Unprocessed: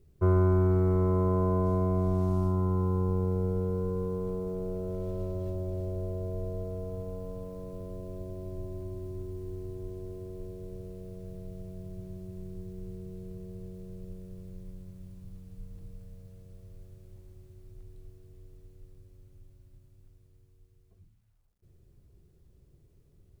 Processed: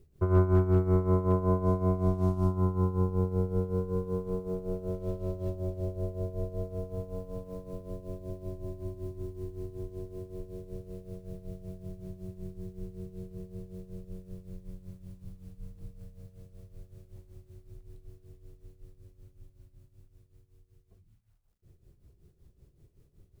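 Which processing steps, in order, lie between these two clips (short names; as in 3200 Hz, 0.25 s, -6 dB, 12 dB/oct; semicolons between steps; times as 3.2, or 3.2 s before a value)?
tremolo 5.3 Hz, depth 74%; hard clip -17.5 dBFS, distortion -34 dB; gain +3 dB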